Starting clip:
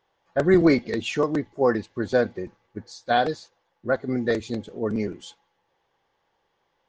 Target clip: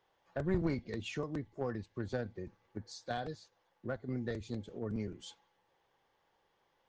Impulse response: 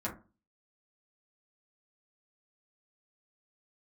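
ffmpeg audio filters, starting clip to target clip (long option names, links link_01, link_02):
-filter_complex "[0:a]acrossover=split=140[link_01][link_02];[link_02]acompressor=threshold=-41dB:ratio=2.5[link_03];[link_01][link_03]amix=inputs=2:normalize=0,asplit=2[link_04][link_05];[link_05]acrusher=bits=3:mix=0:aa=0.5,volume=-9dB[link_06];[link_04][link_06]amix=inputs=2:normalize=0,volume=-3.5dB"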